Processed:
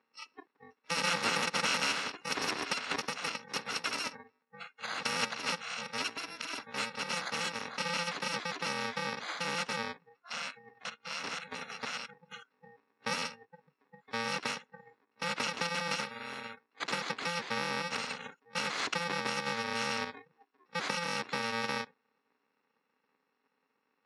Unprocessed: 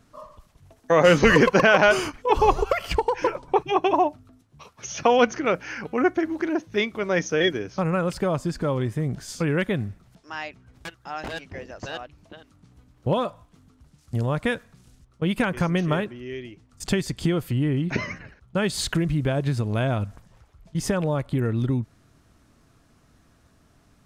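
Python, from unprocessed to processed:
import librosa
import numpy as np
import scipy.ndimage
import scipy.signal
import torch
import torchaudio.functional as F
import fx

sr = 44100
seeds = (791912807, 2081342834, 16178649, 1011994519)

y = fx.bit_reversed(x, sr, seeds[0], block=128)
y = fx.cabinet(y, sr, low_hz=280.0, low_slope=24, high_hz=3300.0, hz=(620.0, 1000.0, 1800.0, 3000.0), db=(-9, 6, 4, -9))
y = fx.noise_reduce_blind(y, sr, reduce_db=27)
y = fx.spectral_comp(y, sr, ratio=2.0)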